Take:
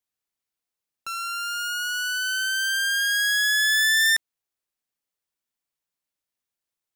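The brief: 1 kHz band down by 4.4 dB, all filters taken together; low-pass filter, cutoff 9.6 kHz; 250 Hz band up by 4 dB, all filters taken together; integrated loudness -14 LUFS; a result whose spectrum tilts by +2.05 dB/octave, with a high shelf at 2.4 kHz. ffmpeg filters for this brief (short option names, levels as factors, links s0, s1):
-af "lowpass=9600,equalizer=f=250:t=o:g=5.5,equalizer=f=1000:t=o:g=-7,highshelf=f=2400:g=-3.5,volume=3.55"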